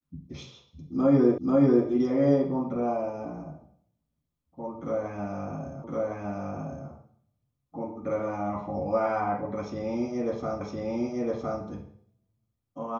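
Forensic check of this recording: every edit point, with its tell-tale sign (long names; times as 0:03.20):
0:01.38: the same again, the last 0.49 s
0:05.84: the same again, the last 1.06 s
0:10.61: the same again, the last 1.01 s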